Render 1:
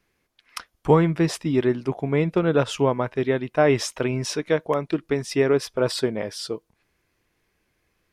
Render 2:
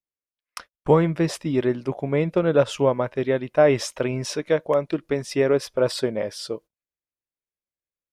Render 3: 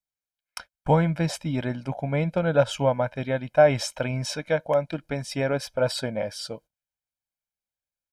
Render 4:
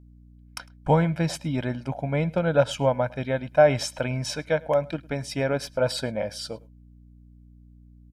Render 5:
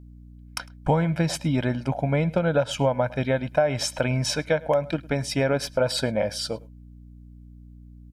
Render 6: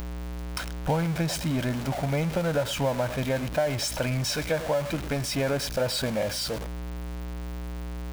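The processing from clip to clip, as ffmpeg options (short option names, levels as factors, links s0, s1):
-af "agate=range=0.0282:threshold=0.00891:ratio=16:detection=peak,equalizer=f=560:w=5.2:g=8.5,volume=0.841"
-af "aecho=1:1:1.3:0.75,volume=0.75"
-filter_complex "[0:a]aeval=exprs='val(0)+0.00355*(sin(2*PI*60*n/s)+sin(2*PI*2*60*n/s)/2+sin(2*PI*3*60*n/s)/3+sin(2*PI*4*60*n/s)/4+sin(2*PI*5*60*n/s)/5)':c=same,asplit=2[s0][s1];[s1]adelay=105,volume=0.0631,highshelf=f=4000:g=-2.36[s2];[s0][s2]amix=inputs=2:normalize=0"
-af "acompressor=threshold=0.0708:ratio=6,volume=1.78"
-af "aeval=exprs='val(0)+0.5*0.075*sgn(val(0))':c=same,acompressor=mode=upward:threshold=0.0178:ratio=2.5,volume=0.473"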